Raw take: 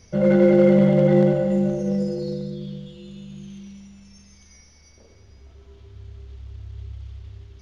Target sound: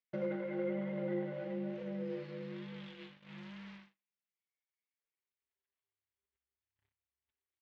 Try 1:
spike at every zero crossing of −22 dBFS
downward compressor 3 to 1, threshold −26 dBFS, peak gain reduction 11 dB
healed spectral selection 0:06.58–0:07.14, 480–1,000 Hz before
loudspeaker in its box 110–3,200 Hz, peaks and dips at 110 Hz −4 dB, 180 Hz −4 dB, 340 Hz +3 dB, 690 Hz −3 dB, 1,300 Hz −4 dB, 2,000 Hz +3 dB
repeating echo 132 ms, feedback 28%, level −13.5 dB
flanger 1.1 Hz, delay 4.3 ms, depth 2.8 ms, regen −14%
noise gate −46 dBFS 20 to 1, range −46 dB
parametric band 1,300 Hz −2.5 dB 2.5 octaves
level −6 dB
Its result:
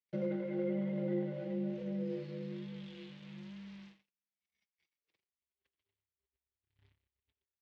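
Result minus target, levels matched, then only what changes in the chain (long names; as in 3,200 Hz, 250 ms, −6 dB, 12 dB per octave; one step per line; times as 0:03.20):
1,000 Hz band −6.5 dB; downward compressor: peak gain reduction −4.5 dB
change: downward compressor 3 to 1, threshold −33 dBFS, peak gain reduction 16 dB
change: parametric band 1,300 Hz +8.5 dB 2.5 octaves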